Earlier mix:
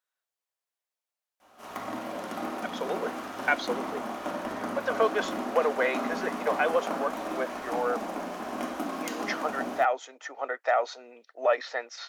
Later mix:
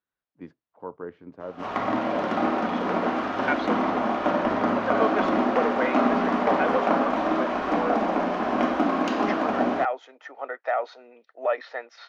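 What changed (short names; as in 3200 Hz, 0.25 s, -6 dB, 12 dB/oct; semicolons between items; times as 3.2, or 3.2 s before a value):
first voice: unmuted; background +11.0 dB; master: add air absorption 230 m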